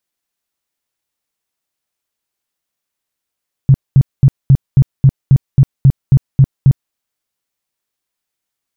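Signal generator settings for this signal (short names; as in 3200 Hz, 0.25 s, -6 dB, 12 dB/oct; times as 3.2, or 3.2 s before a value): tone bursts 135 Hz, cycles 7, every 0.27 s, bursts 12, -2.5 dBFS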